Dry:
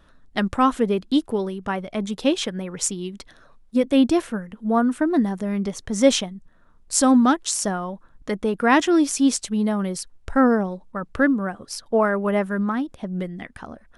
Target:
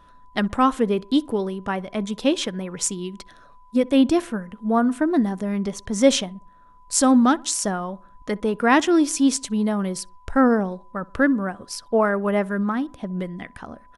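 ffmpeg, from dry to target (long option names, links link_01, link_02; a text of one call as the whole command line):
ffmpeg -i in.wav -filter_complex "[0:a]aeval=exprs='val(0)+0.00251*sin(2*PI*1000*n/s)':channel_layout=same,asplit=2[link_01][link_02];[link_02]adelay=63,lowpass=frequency=1500:poles=1,volume=-23dB,asplit=2[link_03][link_04];[link_04]adelay=63,lowpass=frequency=1500:poles=1,volume=0.52,asplit=2[link_05][link_06];[link_06]adelay=63,lowpass=frequency=1500:poles=1,volume=0.52[link_07];[link_01][link_03][link_05][link_07]amix=inputs=4:normalize=0" out.wav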